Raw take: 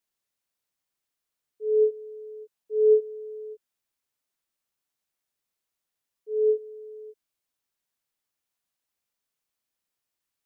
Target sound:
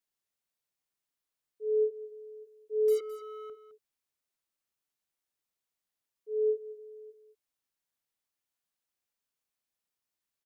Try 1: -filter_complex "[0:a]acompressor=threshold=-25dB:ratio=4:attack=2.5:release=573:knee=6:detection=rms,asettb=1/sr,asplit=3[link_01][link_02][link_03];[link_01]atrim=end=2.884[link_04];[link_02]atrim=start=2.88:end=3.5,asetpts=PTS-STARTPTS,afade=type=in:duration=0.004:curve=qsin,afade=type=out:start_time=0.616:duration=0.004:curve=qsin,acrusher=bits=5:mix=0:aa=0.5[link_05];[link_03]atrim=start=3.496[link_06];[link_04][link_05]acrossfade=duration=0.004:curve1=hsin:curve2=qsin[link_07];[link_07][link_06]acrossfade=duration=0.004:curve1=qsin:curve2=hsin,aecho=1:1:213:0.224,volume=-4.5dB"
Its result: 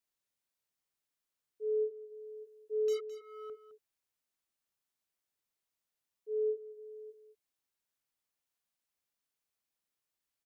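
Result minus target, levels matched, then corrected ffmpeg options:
downward compressor: peak gain reduction +6 dB
-filter_complex "[0:a]acompressor=threshold=-16.5dB:ratio=4:attack=2.5:release=573:knee=6:detection=rms,asettb=1/sr,asplit=3[link_01][link_02][link_03];[link_01]atrim=end=2.884[link_04];[link_02]atrim=start=2.88:end=3.5,asetpts=PTS-STARTPTS,afade=type=in:duration=0.004:curve=qsin,afade=type=out:start_time=0.616:duration=0.004:curve=qsin,acrusher=bits=5:mix=0:aa=0.5[link_05];[link_03]atrim=start=3.496[link_06];[link_04][link_05]acrossfade=duration=0.004:curve1=hsin:curve2=qsin[link_07];[link_07][link_06]acrossfade=duration=0.004:curve1=qsin:curve2=hsin,aecho=1:1:213:0.224,volume=-4.5dB"

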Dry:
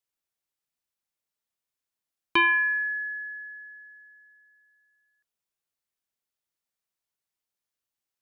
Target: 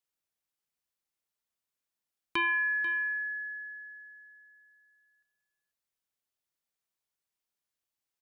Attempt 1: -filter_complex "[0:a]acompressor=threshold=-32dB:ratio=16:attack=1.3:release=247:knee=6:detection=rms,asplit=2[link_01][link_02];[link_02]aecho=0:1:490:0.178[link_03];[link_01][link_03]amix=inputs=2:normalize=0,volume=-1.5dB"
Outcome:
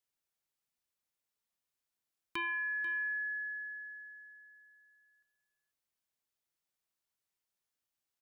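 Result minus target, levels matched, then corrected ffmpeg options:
downward compressor: peak gain reduction +8 dB
-filter_complex "[0:a]acompressor=threshold=-23.5dB:ratio=16:attack=1.3:release=247:knee=6:detection=rms,asplit=2[link_01][link_02];[link_02]aecho=0:1:490:0.178[link_03];[link_01][link_03]amix=inputs=2:normalize=0,volume=-1.5dB"

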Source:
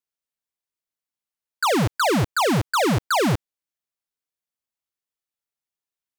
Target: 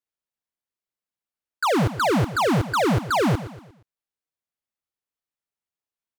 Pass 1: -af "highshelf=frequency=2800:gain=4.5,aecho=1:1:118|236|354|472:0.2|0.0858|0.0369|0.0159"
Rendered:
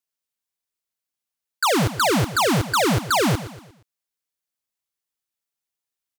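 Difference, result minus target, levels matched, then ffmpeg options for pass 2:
4,000 Hz band +5.0 dB
-af "highshelf=frequency=2800:gain=-6.5,aecho=1:1:118|236|354|472:0.2|0.0858|0.0369|0.0159"

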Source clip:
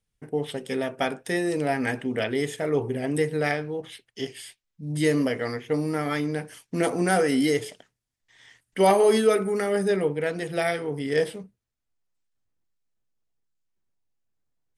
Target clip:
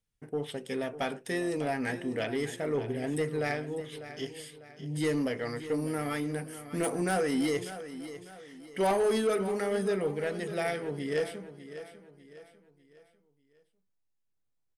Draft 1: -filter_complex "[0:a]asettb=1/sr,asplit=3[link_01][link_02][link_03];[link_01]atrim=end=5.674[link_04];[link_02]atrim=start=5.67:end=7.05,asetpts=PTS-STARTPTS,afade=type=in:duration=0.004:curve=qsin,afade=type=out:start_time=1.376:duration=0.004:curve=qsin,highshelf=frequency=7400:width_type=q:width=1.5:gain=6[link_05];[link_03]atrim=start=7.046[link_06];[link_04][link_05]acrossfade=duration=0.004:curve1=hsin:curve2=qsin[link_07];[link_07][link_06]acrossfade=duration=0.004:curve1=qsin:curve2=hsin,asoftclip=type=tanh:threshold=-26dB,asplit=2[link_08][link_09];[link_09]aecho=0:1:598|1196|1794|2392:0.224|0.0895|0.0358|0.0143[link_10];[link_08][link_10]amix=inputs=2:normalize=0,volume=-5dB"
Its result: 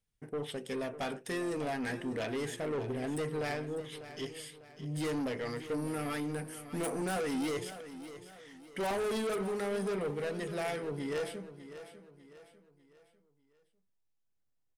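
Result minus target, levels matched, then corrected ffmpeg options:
soft clipping: distortion +9 dB
-filter_complex "[0:a]asettb=1/sr,asplit=3[link_01][link_02][link_03];[link_01]atrim=end=5.674[link_04];[link_02]atrim=start=5.67:end=7.05,asetpts=PTS-STARTPTS,afade=type=in:duration=0.004:curve=qsin,afade=type=out:start_time=1.376:duration=0.004:curve=qsin,highshelf=frequency=7400:width_type=q:width=1.5:gain=6[link_05];[link_03]atrim=start=7.046[link_06];[link_04][link_05]acrossfade=duration=0.004:curve1=hsin:curve2=qsin[link_07];[link_07][link_06]acrossfade=duration=0.004:curve1=qsin:curve2=hsin,asoftclip=type=tanh:threshold=-16dB,asplit=2[link_08][link_09];[link_09]aecho=0:1:598|1196|1794|2392:0.224|0.0895|0.0358|0.0143[link_10];[link_08][link_10]amix=inputs=2:normalize=0,volume=-5dB"

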